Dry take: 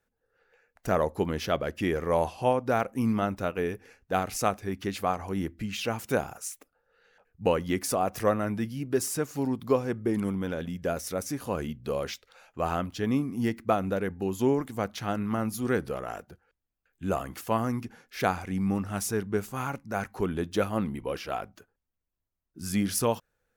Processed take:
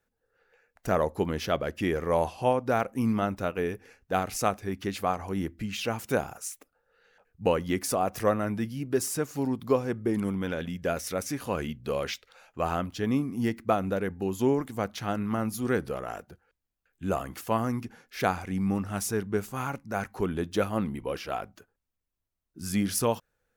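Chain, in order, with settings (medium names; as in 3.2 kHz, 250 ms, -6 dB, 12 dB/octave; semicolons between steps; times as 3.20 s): 10.31–12.63 s: dynamic bell 2.4 kHz, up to +5 dB, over -50 dBFS, Q 0.8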